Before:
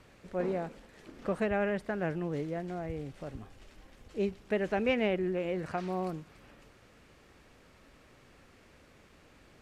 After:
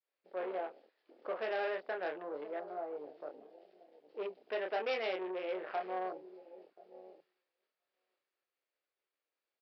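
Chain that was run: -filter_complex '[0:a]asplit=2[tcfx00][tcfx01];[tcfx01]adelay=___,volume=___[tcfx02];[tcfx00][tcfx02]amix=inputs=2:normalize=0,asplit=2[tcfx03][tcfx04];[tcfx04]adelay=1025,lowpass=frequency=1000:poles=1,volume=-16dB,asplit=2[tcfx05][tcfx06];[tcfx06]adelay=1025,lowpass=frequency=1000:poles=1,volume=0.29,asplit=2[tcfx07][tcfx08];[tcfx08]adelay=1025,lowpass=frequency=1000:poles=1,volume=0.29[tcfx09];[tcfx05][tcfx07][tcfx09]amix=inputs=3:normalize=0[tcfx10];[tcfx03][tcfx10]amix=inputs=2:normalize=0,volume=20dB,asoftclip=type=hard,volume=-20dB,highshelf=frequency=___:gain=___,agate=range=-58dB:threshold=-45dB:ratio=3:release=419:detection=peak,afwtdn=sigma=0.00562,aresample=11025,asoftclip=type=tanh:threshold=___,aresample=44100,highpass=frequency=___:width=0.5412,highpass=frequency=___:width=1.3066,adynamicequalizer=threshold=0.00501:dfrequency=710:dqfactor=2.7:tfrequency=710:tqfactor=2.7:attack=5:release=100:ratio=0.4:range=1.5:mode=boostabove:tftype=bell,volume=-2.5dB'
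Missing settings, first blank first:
27, -5dB, 4300, 9.5, -27.5dB, 400, 400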